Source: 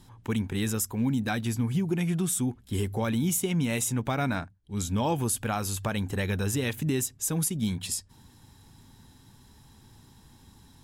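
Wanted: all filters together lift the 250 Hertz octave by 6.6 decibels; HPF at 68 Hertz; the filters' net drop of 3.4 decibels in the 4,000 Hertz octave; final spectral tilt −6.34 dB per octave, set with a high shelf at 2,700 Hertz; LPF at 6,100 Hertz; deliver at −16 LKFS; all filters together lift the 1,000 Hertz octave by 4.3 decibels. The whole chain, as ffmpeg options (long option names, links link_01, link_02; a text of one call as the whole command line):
ffmpeg -i in.wav -af "highpass=68,lowpass=6100,equalizer=frequency=250:width_type=o:gain=8,equalizer=frequency=1000:width_type=o:gain=5,highshelf=frequency=2700:gain=3.5,equalizer=frequency=4000:width_type=o:gain=-7,volume=9dB" out.wav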